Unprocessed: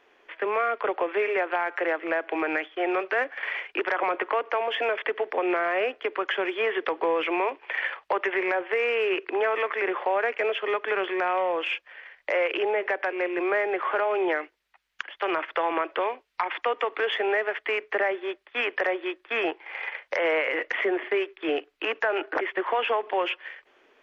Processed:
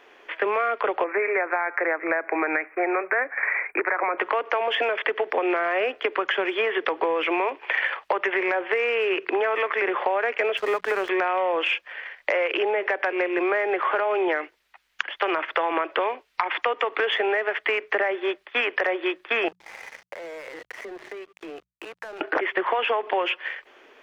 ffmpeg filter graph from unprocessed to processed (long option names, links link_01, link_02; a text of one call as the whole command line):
ffmpeg -i in.wav -filter_complex "[0:a]asettb=1/sr,asplit=3[link_01][link_02][link_03];[link_01]atrim=end=1.044[link_04];[link_02]atrim=start=1.04:end=4.18,asetpts=PTS-STARTPTS,afade=type=in:duration=0.004:curve=qsin,afade=type=out:start_time=3.136:duration=0.004:curve=qsin,asuperstop=centerf=4500:order=20:qfactor=0.8,tiltshelf=frequency=1400:gain=-3[link_05];[link_03]atrim=start=4.176[link_06];[link_04][link_05]acrossfade=duration=0.004:curve1=hsin:curve2=qsin[link_07];[link_07][link_06]acrossfade=duration=0.004:curve1=qsin:curve2=hsin,asettb=1/sr,asplit=3[link_08][link_09][link_10];[link_08]atrim=end=10.574[link_11];[link_09]atrim=start=10.57:end=11.09,asetpts=PTS-STARTPTS,afade=type=in:duration=0.004:curve=qsin,afade=type=out:start_time=0.516:duration=0.004:curve=qsin,lowpass=frequency=1700:poles=1,aeval=exprs='sgn(val(0))*max(abs(val(0))-0.00631,0)':channel_layout=same[link_12];[link_10]atrim=start=11.086[link_13];[link_11][link_12]acrossfade=duration=0.004:curve1=hsin:curve2=qsin[link_14];[link_14][link_13]acrossfade=duration=0.004:curve1=qsin:curve2=hsin,asettb=1/sr,asplit=3[link_15][link_16][link_17];[link_15]atrim=end=19.484[link_18];[link_16]atrim=start=19.48:end=22.21,asetpts=PTS-STARTPTS,afade=type=in:duration=0.004:curve=qsin,afade=type=out:start_time=2.726:duration=0.004:curve=qsin,equalizer=frequency=4500:width_type=o:width=2.7:gain=-9.5,acompressor=threshold=-42dB:ratio=5:attack=3.2:release=140:knee=1:detection=peak,aeval=exprs='sgn(val(0))*max(abs(val(0))-0.00266,0)':channel_layout=same[link_19];[link_17]atrim=start=22.206[link_20];[link_18][link_19]acrossfade=duration=0.004:curve1=hsin:curve2=qsin[link_21];[link_21][link_20]acrossfade=duration=0.004:curve1=qsin:curve2=hsin,lowshelf=frequency=230:gain=-4,bandreject=frequency=60:width_type=h:width=6,bandreject=frequency=120:width_type=h:width=6,bandreject=frequency=180:width_type=h:width=6,acompressor=threshold=-29dB:ratio=6,volume=8.5dB" out.wav